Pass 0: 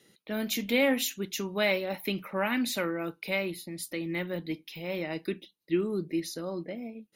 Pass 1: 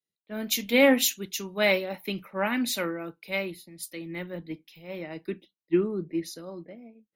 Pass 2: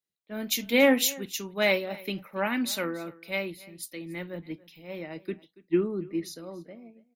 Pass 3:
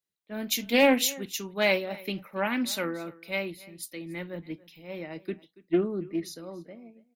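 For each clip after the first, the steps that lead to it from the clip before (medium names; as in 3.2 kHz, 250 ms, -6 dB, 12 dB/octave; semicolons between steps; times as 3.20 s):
three bands expanded up and down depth 100%
delay 282 ms -21.5 dB; trim -1 dB
loudspeaker Doppler distortion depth 0.18 ms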